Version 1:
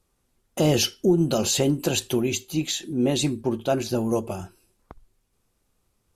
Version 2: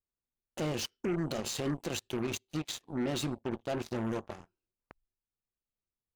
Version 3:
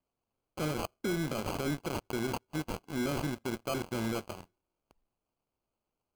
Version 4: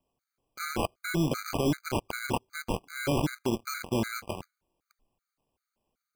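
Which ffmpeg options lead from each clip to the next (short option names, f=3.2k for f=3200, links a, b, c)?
-af "alimiter=limit=-17dB:level=0:latency=1:release=71,adynamicsmooth=sensitivity=5.5:basefreq=4.3k,aeval=exprs='0.141*(cos(1*acos(clip(val(0)/0.141,-1,1)))-cos(1*PI/2))+0.0224*(cos(7*acos(clip(val(0)/0.141,-1,1)))-cos(7*PI/2))':c=same,volume=-8dB"
-filter_complex "[0:a]highshelf=f=8.5k:g=7.5,asplit=2[a][b];[b]alimiter=level_in=8.5dB:limit=-24dB:level=0:latency=1:release=18,volume=-8.5dB,volume=-2.5dB[c];[a][c]amix=inputs=2:normalize=0,acrusher=samples=24:mix=1:aa=0.000001,volume=-2.5dB"
-af "afftfilt=real='re*gt(sin(2*PI*2.6*pts/sr)*(1-2*mod(floor(b*sr/1024/1200),2)),0)':imag='im*gt(sin(2*PI*2.6*pts/sr)*(1-2*mod(floor(b*sr/1024/1200),2)),0)':win_size=1024:overlap=0.75,volume=7.5dB"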